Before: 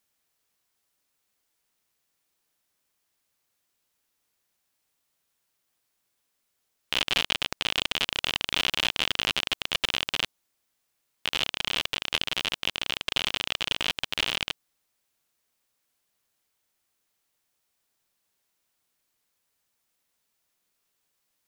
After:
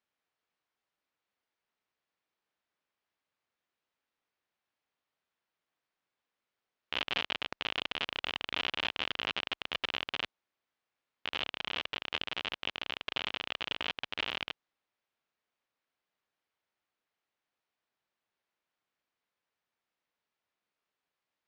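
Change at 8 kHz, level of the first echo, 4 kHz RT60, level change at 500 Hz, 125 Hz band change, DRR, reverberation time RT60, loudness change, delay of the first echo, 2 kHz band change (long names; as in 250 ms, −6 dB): −20.0 dB, no echo audible, no reverb audible, −5.0 dB, −9.5 dB, no reverb audible, no reverb audible, −8.0 dB, no echo audible, −6.5 dB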